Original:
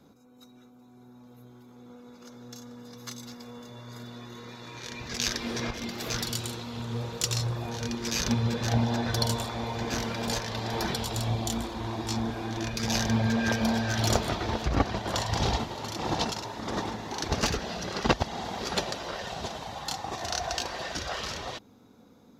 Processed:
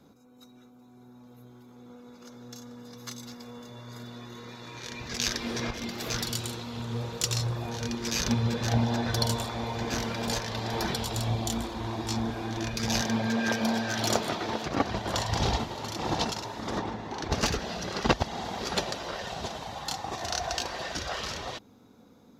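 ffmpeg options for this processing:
ffmpeg -i in.wav -filter_complex "[0:a]asettb=1/sr,asplit=3[link_01][link_02][link_03];[link_01]atrim=end=13.014[link_04];[link_02]atrim=start=13.01:end=14.85,asetpts=PTS-STARTPTS,afade=type=in:duration=0.004:curve=qsin,afade=type=out:start_time=1.836:duration=0.004:curve=qsin,highpass=170[link_05];[link_03]atrim=start=14.846[link_06];[link_04][link_05]acrossfade=duration=0.004:curve1=hsin:curve2=qsin[link_07];[link_07][link_06]acrossfade=duration=0.004:curve1=qsin:curve2=hsin,asplit=3[link_08][link_09][link_10];[link_08]afade=type=out:start_time=16.77:duration=0.02[link_11];[link_09]lowpass=frequency=2400:poles=1,afade=type=in:start_time=16.77:duration=0.02,afade=type=out:start_time=17.3:duration=0.02[link_12];[link_10]afade=type=in:start_time=17.3:duration=0.02[link_13];[link_11][link_12][link_13]amix=inputs=3:normalize=0" out.wav

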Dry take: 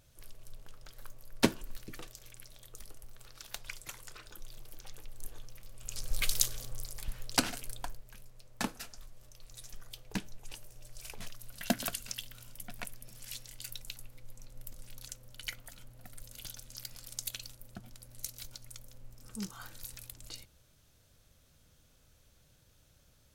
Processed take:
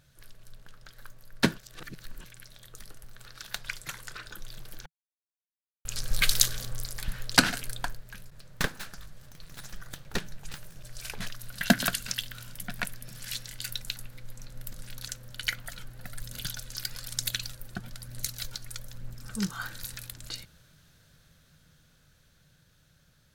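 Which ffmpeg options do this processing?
ffmpeg -i in.wav -filter_complex "[0:a]asplit=3[link_01][link_02][link_03];[link_01]afade=type=out:start_time=8.3:duration=0.02[link_04];[link_02]aeval=exprs='abs(val(0))':channel_layout=same,afade=type=in:start_time=8.3:duration=0.02,afade=type=out:start_time=10.82:duration=0.02[link_05];[link_03]afade=type=in:start_time=10.82:duration=0.02[link_06];[link_04][link_05][link_06]amix=inputs=3:normalize=0,asplit=3[link_07][link_08][link_09];[link_07]afade=type=out:start_time=15.59:duration=0.02[link_10];[link_08]aphaser=in_gain=1:out_gain=1:delay=2.9:decay=0.37:speed=1.1:type=triangular,afade=type=in:start_time=15.59:duration=0.02,afade=type=out:start_time=19.42:duration=0.02[link_11];[link_09]afade=type=in:start_time=19.42:duration=0.02[link_12];[link_10][link_11][link_12]amix=inputs=3:normalize=0,asplit=5[link_13][link_14][link_15][link_16][link_17];[link_13]atrim=end=1.582[link_18];[link_14]atrim=start=1.578:end=2.242,asetpts=PTS-STARTPTS,areverse[link_19];[link_15]atrim=start=2.238:end=4.86,asetpts=PTS-STARTPTS,afade=type=out:start_time=2.618:duration=0.004:curve=hsin[link_20];[link_16]atrim=start=4.86:end=5.85,asetpts=PTS-STARTPTS,volume=0[link_21];[link_17]atrim=start=5.85,asetpts=PTS-STARTPTS,afade=type=in:duration=0.004:curve=hsin[link_22];[link_18][link_19]acrossfade=duration=0.004:curve1=hsin:curve2=hsin[link_23];[link_20][link_21][link_22]concat=n=3:v=0:a=1[link_24];[link_23][link_24]acrossfade=duration=0.004:curve1=hsin:curve2=hsin,dynaudnorm=framelen=480:gausssize=13:maxgain=7.5dB,equalizer=frequency=160:width_type=o:width=0.67:gain=10,equalizer=frequency=1600:width_type=o:width=0.67:gain=10,equalizer=frequency=4000:width_type=o:width=0.67:gain=5,volume=-1.5dB" out.wav

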